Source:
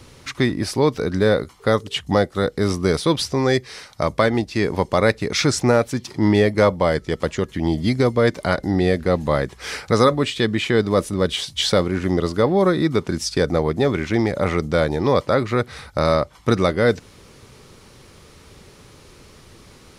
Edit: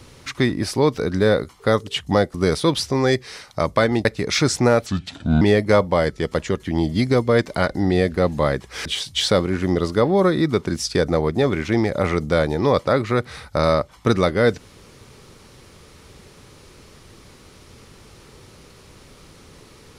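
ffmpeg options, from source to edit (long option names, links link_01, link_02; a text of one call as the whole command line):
ffmpeg -i in.wav -filter_complex "[0:a]asplit=6[link_01][link_02][link_03][link_04][link_05][link_06];[link_01]atrim=end=2.342[link_07];[link_02]atrim=start=2.758:end=4.472[link_08];[link_03]atrim=start=5.078:end=5.894[link_09];[link_04]atrim=start=5.89:end=6.3,asetpts=PTS-STARTPTS,asetrate=32634,aresample=44100[link_10];[link_05]atrim=start=6.296:end=9.742[link_11];[link_06]atrim=start=11.268[link_12];[link_07][link_08]acrossfade=duration=0.004:curve1=hsin:curve2=hsin[link_13];[link_13][link_09]acrossfade=duration=0.004:curve1=hsin:curve2=hsin[link_14];[link_14][link_10]acrossfade=duration=0.004:curve1=hsin:curve2=hsin[link_15];[link_15][link_11]acrossfade=duration=0.004:curve1=hsin:curve2=hsin[link_16];[link_16][link_12]acrossfade=duration=0.004:curve1=hsin:curve2=hsin" out.wav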